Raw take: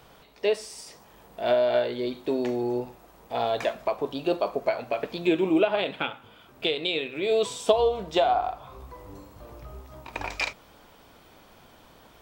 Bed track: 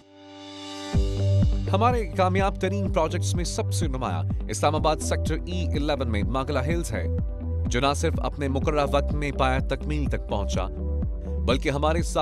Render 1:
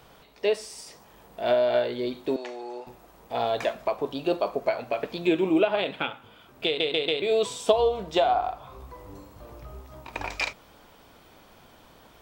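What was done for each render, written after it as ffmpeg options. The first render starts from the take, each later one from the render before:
-filter_complex "[0:a]asettb=1/sr,asplit=3[a][b][c];[a]atrim=end=2.364[d];[b]atrim=start=2.36:end=2.87,asetpts=PTS-STARTPTS,afade=t=in:d=0.004:c=qsin,afade=t=out:st=0.506:d=0.004:c=qsin,highpass=710,lowpass=7.6k[e];[c]atrim=start=2.866[f];[d][e]acrossfade=d=0.004:c1=hsin:c2=qsin[g];[g][f]acrossfade=d=0.004:c1=qsin:c2=hsin,asplit=5[h][i][j][k][l];[h]atrim=end=6.802[m];[i]atrim=start=6.658:end=6.802[n];[j]atrim=start=6.658:end=6.802[o];[k]atrim=start=6.658:end=6.802[p];[l]atrim=start=7.218[q];[m][n]acrossfade=d=0.004:c1=hsin:c2=hsin[r];[r][o]acrossfade=d=0.004:c1=hsin:c2=hsin[s];[s][p]acrossfade=d=0.004:c1=hsin:c2=hsin[t];[t][q]acrossfade=d=0.004:c1=hsin:c2=hsin"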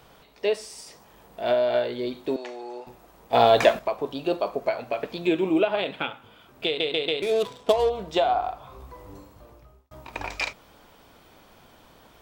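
-filter_complex "[0:a]asettb=1/sr,asplit=3[a][b][c];[a]atrim=end=7.224[d];[b]atrim=start=7.22:end=7.9,asetpts=PTS-STARTPTS,afade=t=in:d=0.004:c=qsin,afade=t=out:st=0.676:d=0.004:c=qsin,adynamicsmooth=sensitivity=7.5:basefreq=720[e];[c]atrim=start=7.896[f];[d][e]acrossfade=d=0.004:c1=hsin:c2=qsin[g];[g][f]acrossfade=d=0.004:c1=qsin:c2=hsin,asplit=4[h][i][j][k];[h]atrim=end=3.332[l];[i]atrim=start=3.328:end=3.792,asetpts=PTS-STARTPTS,volume=9.5dB[m];[j]atrim=start=3.788:end=9.91,asetpts=PTS-STARTPTS,afade=t=out:st=5.372:d=0.75[n];[k]atrim=start=9.91,asetpts=PTS-STARTPTS,afade=t=in:d=0.004:c=hsin[o];[l][m]acrossfade=d=0.004:c1=hsin:c2=hsin[p];[n][o]concat=n=2:v=0:a=1[q];[p][q]acrossfade=d=0.004:c1=hsin:c2=hsin"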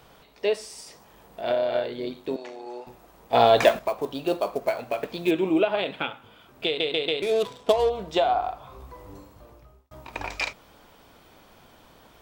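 -filter_complex "[0:a]asettb=1/sr,asplit=3[a][b][c];[a]atrim=end=1.414[d];[b]atrim=start=1.41:end=2.67,asetpts=PTS-STARTPTS,afade=t=in:d=0.004:c=qsin,afade=t=out:st=1.256:d=0.004:c=qsin,tremolo=f=90:d=0.519[e];[c]atrim=start=2.666[f];[d][e]acrossfade=d=0.004:c1=hsin:c2=qsin[g];[g][f]acrossfade=d=0.004:c1=qsin:c2=hsin,asettb=1/sr,asplit=3[h][i][j];[h]atrim=end=3.624[k];[i]atrim=start=3.62:end=5.31,asetpts=PTS-STARTPTS,afade=t=in:d=0.004:c=qsin,afade=t=out:st=1.686:d=0.004:c=qsin,acrusher=bits=6:mode=log:mix=0:aa=0.000001[l];[j]atrim=start=5.306[m];[k][l]acrossfade=d=0.004:c1=hsin:c2=qsin[n];[n][m]acrossfade=d=0.004:c1=qsin:c2=hsin"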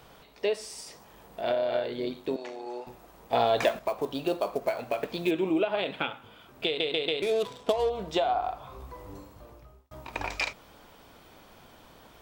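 -af "acompressor=threshold=-26dB:ratio=2"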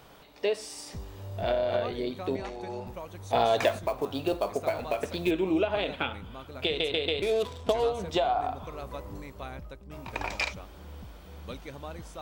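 -filter_complex "[1:a]volume=-18dB[a];[0:a][a]amix=inputs=2:normalize=0"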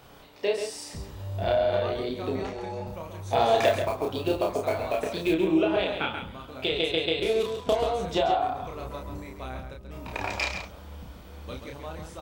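-filter_complex "[0:a]asplit=2[a][b];[b]adelay=31,volume=-3dB[c];[a][c]amix=inputs=2:normalize=0,asplit=2[d][e];[e]adelay=134.1,volume=-7dB,highshelf=f=4k:g=-3.02[f];[d][f]amix=inputs=2:normalize=0"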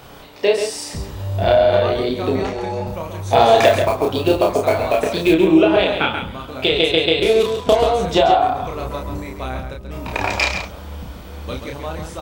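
-af "volume=10.5dB,alimiter=limit=-1dB:level=0:latency=1"

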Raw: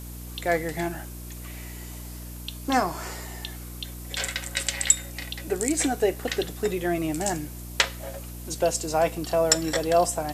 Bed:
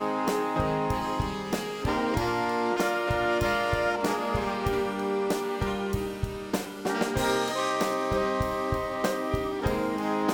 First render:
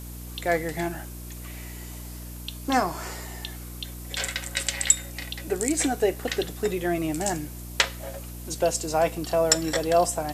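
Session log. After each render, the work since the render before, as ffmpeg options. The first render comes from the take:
-af anull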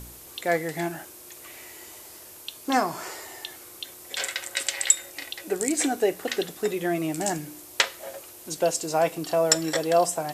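-af "bandreject=f=60:t=h:w=4,bandreject=f=120:t=h:w=4,bandreject=f=180:t=h:w=4,bandreject=f=240:t=h:w=4,bandreject=f=300:t=h:w=4"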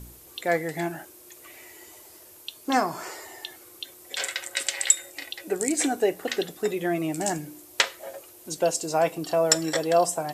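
-af "afftdn=nr=6:nf=-46"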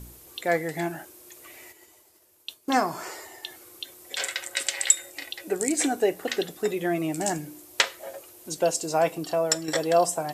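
-filter_complex "[0:a]asplit=3[a][b][c];[a]afade=t=out:st=1.71:d=0.02[d];[b]agate=range=-33dB:threshold=-42dB:ratio=3:release=100:detection=peak,afade=t=in:st=1.71:d=0.02,afade=t=out:st=3.43:d=0.02[e];[c]afade=t=in:st=3.43:d=0.02[f];[d][e][f]amix=inputs=3:normalize=0,asplit=2[g][h];[g]atrim=end=9.68,asetpts=PTS-STARTPTS,afade=t=out:st=9.16:d=0.52:silence=0.473151[i];[h]atrim=start=9.68,asetpts=PTS-STARTPTS,afade=t=in:d=0.004:c=hsin:silence=0.473151[j];[i][j]concat=n=2:v=0:a=1"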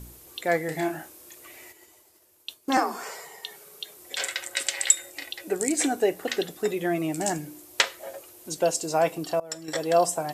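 -filter_complex "[0:a]asettb=1/sr,asplit=3[a][b][c];[a]atrim=end=0.654[d];[b]atrim=start=0.65:end=1.35,asetpts=PTS-STARTPTS,afade=t=in:d=0.004:c=qsin,afade=t=out:st=0.696:d=0.004:c=qsin,asplit=2[e][f];[f]adelay=32,volume=-6dB[g];[e][g]amix=inputs=2:normalize=0,atrim=end_sample=30870[h];[c]atrim=start=1.346[i];[d][h]acrossfade=d=0.004:c1=hsin:c2=qsin[j];[j][i]acrossfade=d=0.004:c1=qsin:c2=hsin,asettb=1/sr,asplit=3[k][l][m];[k]atrim=end=2.774[n];[l]atrim=start=2.77:end=3.97,asetpts=PTS-STARTPTS,afade=t=in:d=0.004:c=qsin,afade=t=out:st=1.196:d=0.004:c=qsin,afreqshift=65[o];[m]atrim=start=3.966[p];[n][o]acrossfade=d=0.004:c1=hsin:c2=qsin[q];[q][p]acrossfade=d=0.004:c1=qsin:c2=hsin,asplit=2[r][s];[r]atrim=end=9.4,asetpts=PTS-STARTPTS,afade=t=out:st=9.396:d=0.004:c=hsin:silence=0.0749894[t];[s]atrim=start=9.4,asetpts=PTS-STARTPTS,afade=t=in:d=0.56:silence=0.0749894[u];[t][u]concat=n=2:v=0:a=1"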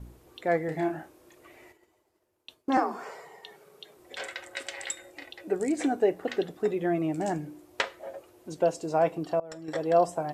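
-af "agate=range=-6dB:threshold=-51dB:ratio=16:detection=peak,lowpass=f=1.1k:p=1"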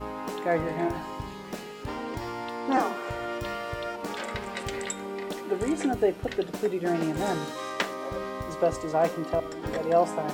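-filter_complex "[1:a]volume=-7.5dB[a];[0:a][a]amix=inputs=2:normalize=0"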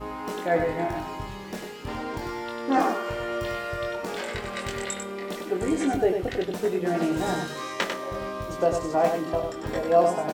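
-filter_complex "[0:a]asplit=2[a][b];[b]adelay=22,volume=-4.5dB[c];[a][c]amix=inputs=2:normalize=0,aecho=1:1:97:0.501"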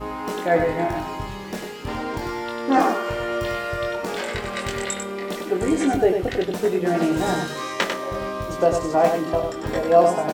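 -af "volume=4.5dB"

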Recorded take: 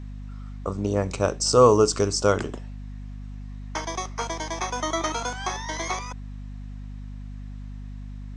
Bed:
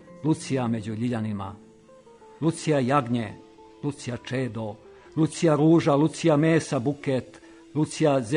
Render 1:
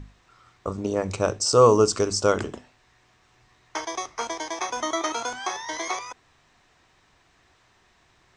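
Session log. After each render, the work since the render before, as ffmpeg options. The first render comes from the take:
-af "bandreject=f=50:t=h:w=6,bandreject=f=100:t=h:w=6,bandreject=f=150:t=h:w=6,bandreject=f=200:t=h:w=6,bandreject=f=250:t=h:w=6"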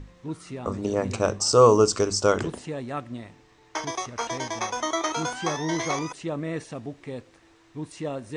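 -filter_complex "[1:a]volume=-10.5dB[a];[0:a][a]amix=inputs=2:normalize=0"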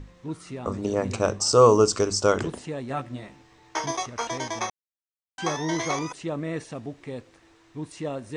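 -filter_complex "[0:a]asettb=1/sr,asplit=3[a][b][c];[a]atrim=end=2.884[d];[b]atrim=start=2.88:end=4.03,asetpts=PTS-STARTPTS,afade=t=in:d=0.004:c=qsin,afade=t=out:st=1.146:d=0.004:c=qsin,asplit=2[e][f];[f]adelay=15,volume=-3dB[g];[e][g]amix=inputs=2:normalize=0,atrim=end_sample=50715[h];[c]atrim=start=4.026[i];[d][h]acrossfade=d=0.004:c1=hsin:c2=qsin[j];[j][i]acrossfade=d=0.004:c1=qsin:c2=hsin,asplit=3[k][l][m];[k]atrim=end=4.7,asetpts=PTS-STARTPTS,afade=t=out:st=4.696:d=0.004:c=hsin[n];[l]atrim=start=4.7:end=5.38,asetpts=PTS-STARTPTS,volume=0[o];[m]atrim=start=5.38,asetpts=PTS-STARTPTS,afade=t=in:d=0.004:c=hsin[p];[n][o][p]concat=n=3:v=0:a=1"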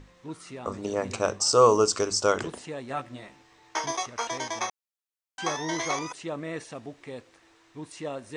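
-af "lowshelf=f=320:g=-9.5"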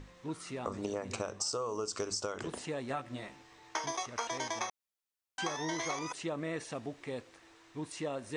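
-af "alimiter=limit=-15.5dB:level=0:latency=1:release=289,acompressor=threshold=-32dB:ratio=12"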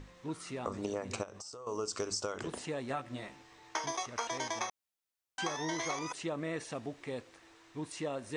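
-filter_complex "[0:a]asettb=1/sr,asplit=3[a][b][c];[a]atrim=end=1.234[d];[b]atrim=start=1.23:end=1.67,asetpts=PTS-STARTPTS,afade=t=in:d=0.004:c=qsin,afade=t=out:st=0.436:d=0.004:c=qsin,acompressor=threshold=-43dB:ratio=12:attack=3.2:release=140:knee=1:detection=peak[e];[c]atrim=start=1.666[f];[d][e]acrossfade=d=0.004:c1=hsin:c2=qsin[g];[g][f]acrossfade=d=0.004:c1=qsin:c2=hsin"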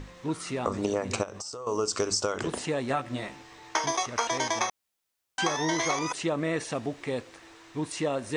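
-af "volume=8.5dB"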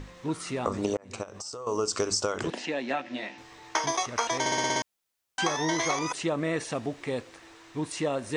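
-filter_complex "[0:a]asettb=1/sr,asplit=3[a][b][c];[a]atrim=end=2.504[d];[b]atrim=start=2.5:end=3.38,asetpts=PTS-STARTPTS,afade=t=in:d=0.004:c=qsin,afade=t=out:st=0.876:d=0.004:c=qsin,highpass=f=210:w=0.5412,highpass=f=210:w=1.3066,equalizer=f=430:t=q:w=4:g=-6,equalizer=f=1.2k:t=q:w=4:g=-9,equalizer=f=1.8k:t=q:w=4:g=3,equalizer=f=2.6k:t=q:w=4:g=5,lowpass=f=6k:w=0.5412,lowpass=f=6k:w=1.3066[e];[c]atrim=start=3.376[f];[d][e]acrossfade=d=0.004:c1=hsin:c2=qsin[g];[g][f]acrossfade=d=0.004:c1=qsin:c2=hsin,asplit=9[h][i][j][k][l][m][n][o][p];[h]atrim=end=0.97,asetpts=PTS-STARTPTS,afade=t=out:st=0.966:d=0.004:c=hsin[q];[i]atrim=start=0.97:end=4.462,asetpts=PTS-STARTPTS,afade=t=in:d=0.5[r];[j]atrim=start=4.398:end=4.462[s];[k]atrim=start=4.398:end=4.462[t];[l]atrim=start=4.398:end=4.462[u];[m]atrim=start=4.398:end=4.462[v];[n]atrim=start=4.398:end=4.462[w];[o]atrim=start=4.398:end=4.462[x];[p]atrim=start=4.818[y];[q][r]concat=n=2:v=0:a=1[z];[z][s]acrossfade=d=0.004:c1=hsin:c2=hsin[aa];[aa][t]acrossfade=d=0.004:c1=hsin:c2=hsin[ab];[ab][u]acrossfade=d=0.004:c1=hsin:c2=hsin[ac];[ac][v]acrossfade=d=0.004:c1=hsin:c2=hsin[ad];[ad][w]acrossfade=d=0.004:c1=hsin:c2=hsin[ae];[ae][x]acrossfade=d=0.004:c1=hsin:c2=hsin[af];[af][y]acrossfade=d=0.004:c1=hsin:c2=hsin"

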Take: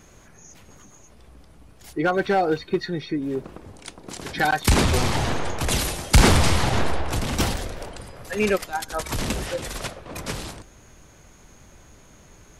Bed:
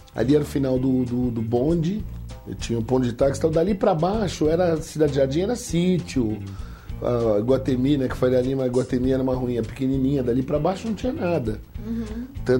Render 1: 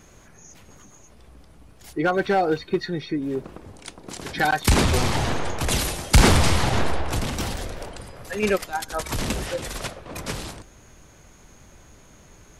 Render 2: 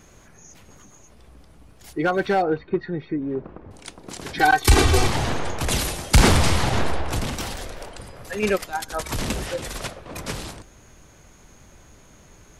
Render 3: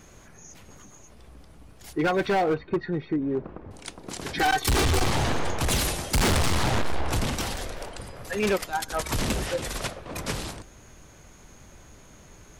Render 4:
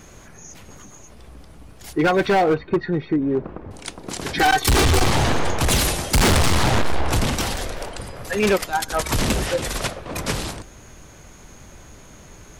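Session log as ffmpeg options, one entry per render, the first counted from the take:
-filter_complex "[0:a]asettb=1/sr,asplit=3[a][b][c];[a]atrim=end=7.294[d];[b]atrim=start=7.29:end=8.43,asetpts=PTS-STARTPTS,afade=t=in:d=0.004:c=qsin,afade=t=out:st=1.136:d=0.004:c=qsin,acompressor=threshold=-25dB:ratio=2.5:attack=3.2:release=140:knee=1:detection=peak[e];[c]atrim=start=8.426[f];[d][e]acrossfade=d=0.004:c1=hsin:c2=qsin[g];[g][f]acrossfade=d=0.004:c1=qsin:c2=hsin"
-filter_complex "[0:a]asettb=1/sr,asplit=3[a][b][c];[a]atrim=end=2.424[d];[b]atrim=start=2.42:end=3.71,asetpts=PTS-STARTPTS,afade=t=in:d=0.004:c=qsin,afade=t=out:st=1.286:d=0.004:c=qsin,lowpass=1.7k[e];[c]atrim=start=3.706[f];[d][e]acrossfade=d=0.004:c1=hsin:c2=qsin[g];[g][f]acrossfade=d=0.004:c1=qsin:c2=hsin,asettb=1/sr,asplit=3[h][i][j];[h]atrim=end=4.394[k];[i]atrim=start=4.39:end=5.07,asetpts=PTS-STARTPTS,afade=t=in:d=0.004:c=qsin,afade=t=out:st=0.676:d=0.004:c=qsin,aecho=1:1:2.6:0.88,atrim=end_sample=29988[l];[j]atrim=start=5.066[m];[k][l]acrossfade=d=0.004:c1=hsin:c2=qsin[n];[n][m]acrossfade=d=0.004:c1=qsin:c2=hsin,asettb=1/sr,asplit=3[o][p][q];[o]atrim=end=7.354[r];[p]atrim=start=7.35:end=7.98,asetpts=PTS-STARTPTS,afade=t=in:d=0.004:c=qsin,afade=t=out:st=0.626:d=0.004:c=qsin,equalizer=f=110:w=0.32:g=-5.5[s];[q]atrim=start=7.976[t];[r][s]acrossfade=d=0.004:c1=hsin:c2=qsin[u];[u][t]acrossfade=d=0.004:c1=qsin:c2=hsin"
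-af "asoftclip=type=hard:threshold=-19.5dB"
-af "volume=6dB"

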